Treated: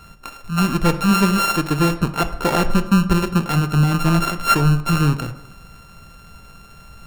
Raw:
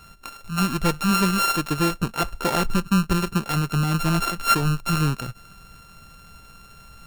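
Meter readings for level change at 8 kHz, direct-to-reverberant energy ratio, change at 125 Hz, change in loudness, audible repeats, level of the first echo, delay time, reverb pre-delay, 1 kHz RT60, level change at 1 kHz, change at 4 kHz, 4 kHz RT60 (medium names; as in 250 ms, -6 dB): +1.0 dB, 10.0 dB, +6.0 dB, +4.5 dB, no echo, no echo, no echo, 24 ms, 0.90 s, +3.5 dB, +1.5 dB, 0.60 s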